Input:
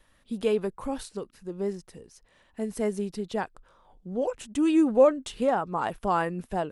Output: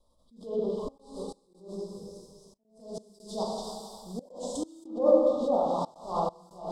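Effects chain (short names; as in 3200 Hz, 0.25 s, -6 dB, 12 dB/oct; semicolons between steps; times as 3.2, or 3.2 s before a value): block floating point 5-bit; elliptic band-stop 1100–3600 Hz, stop band 40 dB; high shelf 3000 Hz -7.5 dB, from 2.8 s +6 dB; thin delay 0.271 s, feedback 32%, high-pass 1500 Hz, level -3 dB; plate-style reverb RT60 1.8 s, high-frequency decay 0.95×, DRR -5 dB; step gate "xxxxxxxx.xxx..x" 136 bpm -24 dB; thirty-one-band EQ 630 Hz +6 dB, 5000 Hz +9 dB, 8000 Hz +7 dB; treble ducked by the level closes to 1500 Hz, closed at -12.5 dBFS; attack slew limiter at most 120 dB/s; gain -7.5 dB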